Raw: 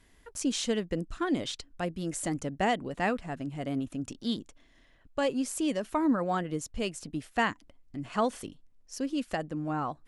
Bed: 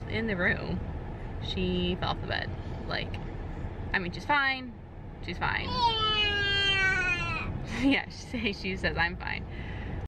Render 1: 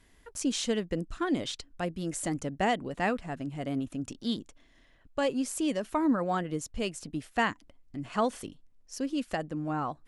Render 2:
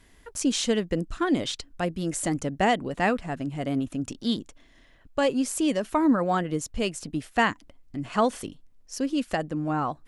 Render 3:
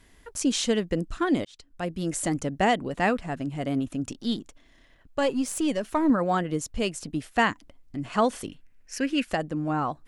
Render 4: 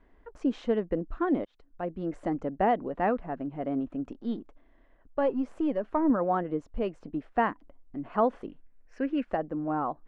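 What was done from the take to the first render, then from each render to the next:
no processing that can be heard
level +5 dB
0:01.45–0:02.02: fade in; 0:04.14–0:06.10: gain on one half-wave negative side −3 dB; 0:08.49–0:09.25: flat-topped bell 2,000 Hz +12 dB 1.1 octaves
low-pass filter 1,100 Hz 12 dB per octave; parametric band 110 Hz −13 dB 1.4 octaves

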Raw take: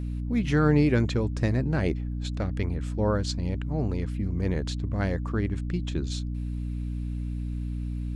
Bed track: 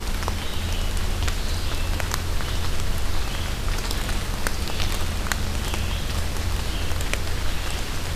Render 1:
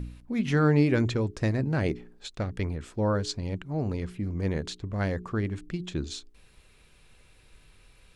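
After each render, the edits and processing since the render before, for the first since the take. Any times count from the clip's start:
hum removal 60 Hz, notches 7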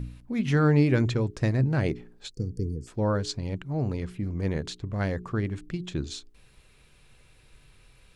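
0:02.32–0:02.87: gain on a spectral selection 510–4,400 Hz −29 dB
parametric band 130 Hz +8 dB 0.21 octaves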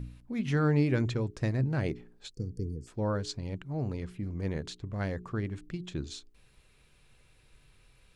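level −5 dB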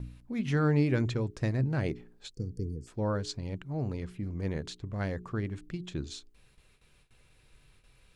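noise gate with hold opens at −52 dBFS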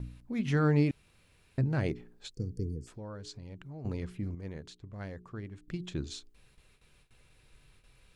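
0:00.91–0:01.58: fill with room tone
0:02.84–0:03.85: downward compressor 3 to 1, threshold −44 dBFS
0:04.35–0:05.68: clip gain −8.5 dB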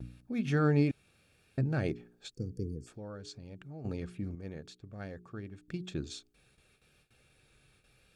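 pitch vibrato 0.89 Hz 26 cents
notch comb filter 1,000 Hz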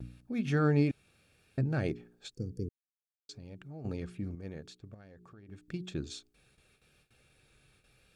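0:02.69–0:03.29: silence
0:04.94–0:05.49: downward compressor, threshold −51 dBFS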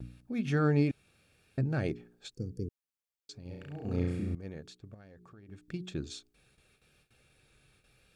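0:03.42–0:04.35: flutter between parallel walls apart 5.8 metres, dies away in 0.98 s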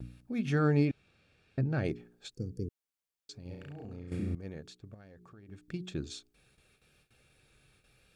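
0:00.85–0:01.85: low-pass filter 5,000 Hz
0:03.54–0:04.12: downward compressor 8 to 1, threshold −41 dBFS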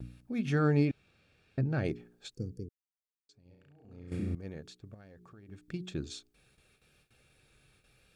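0:02.45–0:04.15: duck −15.5 dB, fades 0.32 s

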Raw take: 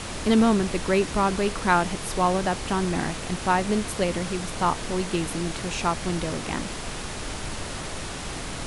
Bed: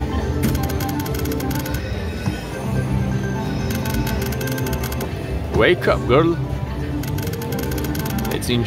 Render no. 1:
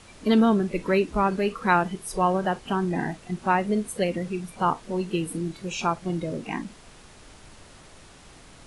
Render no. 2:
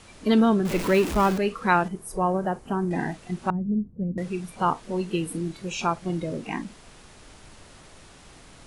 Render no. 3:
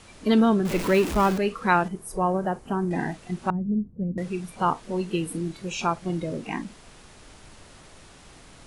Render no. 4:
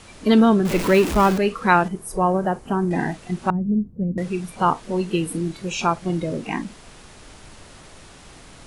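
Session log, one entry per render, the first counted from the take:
noise reduction from a noise print 16 dB
0:00.65–0:01.38: converter with a step at zero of −26 dBFS; 0:01.88–0:02.91: parametric band 3,400 Hz −13 dB 1.9 octaves; 0:03.50–0:04.18: low-pass with resonance 180 Hz, resonance Q 1.5
no processing that can be heard
level +4.5 dB

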